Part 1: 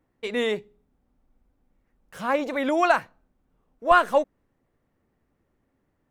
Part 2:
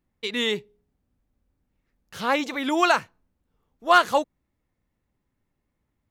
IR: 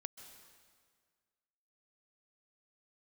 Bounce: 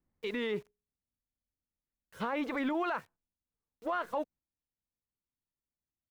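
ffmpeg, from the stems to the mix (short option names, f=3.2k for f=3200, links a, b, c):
-filter_complex "[0:a]acompressor=threshold=-24dB:ratio=6,acrusher=bits=7:mix=0:aa=0.000001,asoftclip=type=hard:threshold=-34.5dB,volume=-12dB,asplit=2[a][b];[1:a]lowpass=1.9k,agate=range=-8dB:threshold=-44dB:ratio=16:detection=peak,acompressor=threshold=-32dB:ratio=1.5,adelay=1.9,volume=1.5dB[c];[b]apad=whole_len=269111[d];[c][d]sidechaingate=range=-17dB:threshold=-51dB:ratio=16:detection=peak[e];[a][e]amix=inputs=2:normalize=0,alimiter=level_in=1dB:limit=-24dB:level=0:latency=1:release=36,volume=-1dB"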